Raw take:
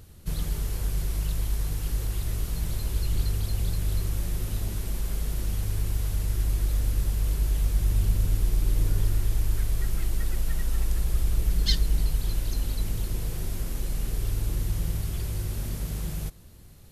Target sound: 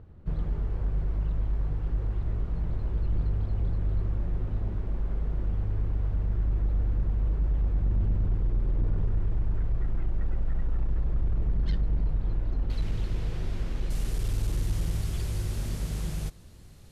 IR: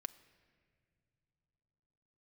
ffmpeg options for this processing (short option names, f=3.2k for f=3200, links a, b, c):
-af "asetnsamples=n=441:p=0,asendcmd='12.7 lowpass f 3500;13.9 lowpass f 8800',lowpass=1.2k,asoftclip=type=hard:threshold=-21dB"